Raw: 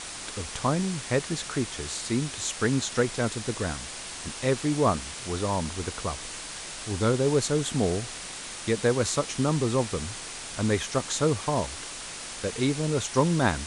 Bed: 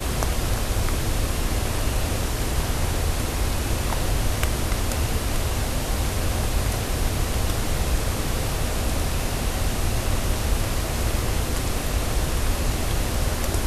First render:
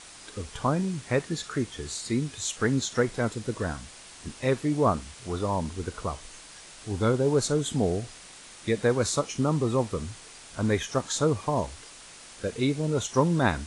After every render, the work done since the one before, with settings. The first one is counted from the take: noise print and reduce 9 dB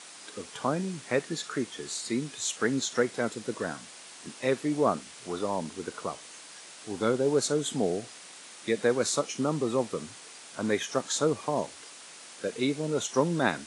Bessel high-pass 230 Hz, order 4; dynamic bell 1 kHz, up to -4 dB, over -40 dBFS, Q 2.6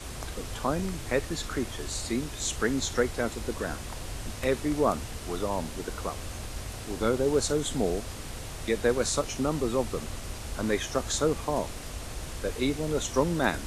add bed -14.5 dB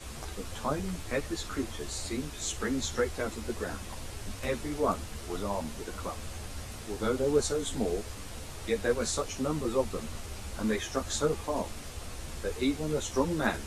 three-phase chorus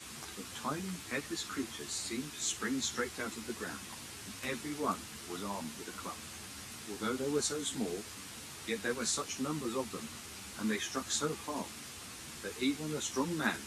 high-pass 190 Hz 12 dB/octave; peaking EQ 570 Hz -11.5 dB 1.2 oct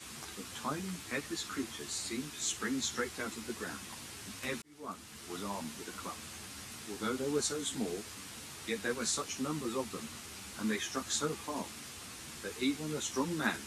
4.62–5.39 s: fade in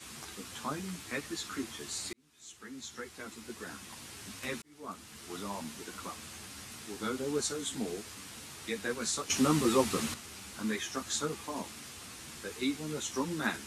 2.13–4.25 s: fade in; 9.30–10.14 s: gain +9.5 dB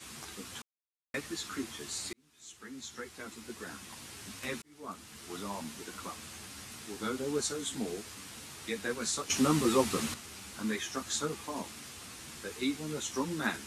0.62–1.14 s: mute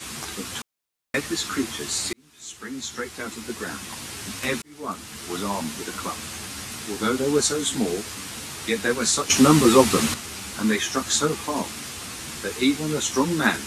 trim +12 dB

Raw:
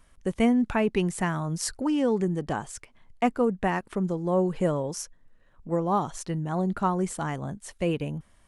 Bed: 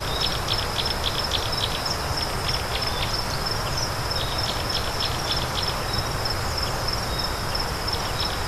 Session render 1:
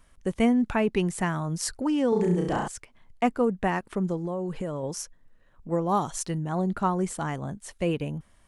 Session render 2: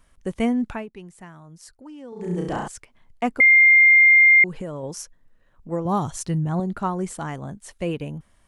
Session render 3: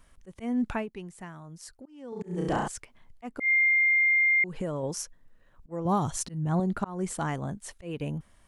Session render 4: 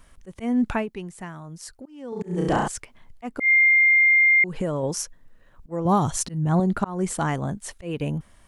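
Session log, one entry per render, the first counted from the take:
2.09–2.68 s: flutter echo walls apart 5.8 m, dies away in 0.72 s; 4.25–4.83 s: compression, threshold -27 dBFS; 5.89–6.38 s: treble shelf 4.4 kHz +8.5 dB
0.64–2.39 s: dip -15.5 dB, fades 0.23 s; 3.40–4.44 s: bleep 2.11 kHz -9.5 dBFS; 5.85–6.60 s: peaking EQ 90 Hz +14 dB 1.7 oct
slow attack 275 ms; compression 12:1, threshold -21 dBFS, peak gain reduction 10 dB
trim +6 dB

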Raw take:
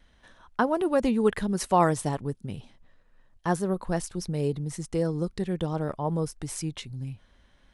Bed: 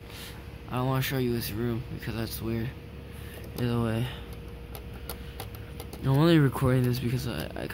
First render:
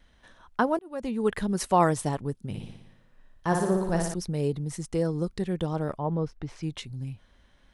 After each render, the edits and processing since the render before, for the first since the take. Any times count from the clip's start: 0.79–1.44 s: fade in; 2.45–4.14 s: flutter echo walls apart 10 m, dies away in 0.85 s; 5.98–6.63 s: distance through air 230 m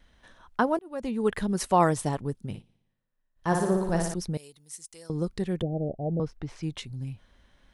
2.50–3.48 s: dip -23 dB, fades 0.13 s; 4.37–5.10 s: pre-emphasis filter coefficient 0.97; 5.62–6.20 s: steep low-pass 750 Hz 96 dB/octave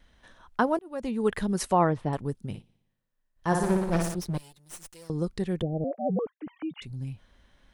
1.73–2.13 s: distance through air 390 m; 3.63–5.10 s: comb filter that takes the minimum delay 5.7 ms; 5.84–6.82 s: formants replaced by sine waves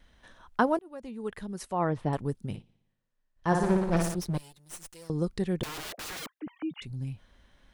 0.71–2.03 s: dip -10 dB, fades 0.30 s; 2.56–3.97 s: distance through air 51 m; 5.63–6.39 s: integer overflow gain 34.5 dB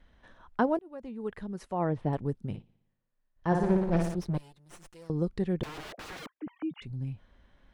dynamic bell 1.2 kHz, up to -5 dB, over -43 dBFS, Q 1.7; low-pass 1.9 kHz 6 dB/octave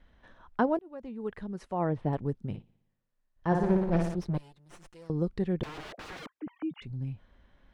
treble shelf 8.2 kHz -10 dB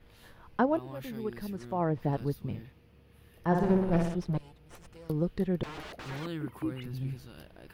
add bed -17 dB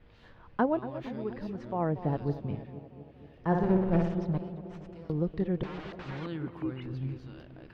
distance through air 170 m; tape echo 236 ms, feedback 75%, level -11 dB, low-pass 1.2 kHz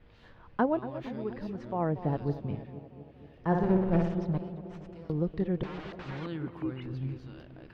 no audible change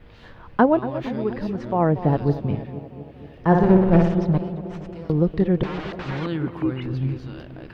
trim +10.5 dB

